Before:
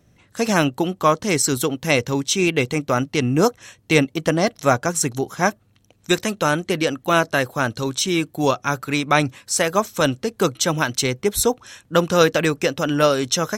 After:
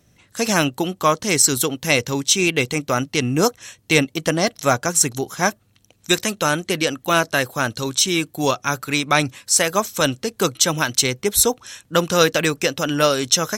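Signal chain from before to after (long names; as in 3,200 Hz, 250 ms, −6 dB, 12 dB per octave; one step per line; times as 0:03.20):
high-shelf EQ 2,500 Hz +8 dB
in parallel at −4.5 dB: asymmetric clip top −5.5 dBFS
on the sum: level −5.5 dB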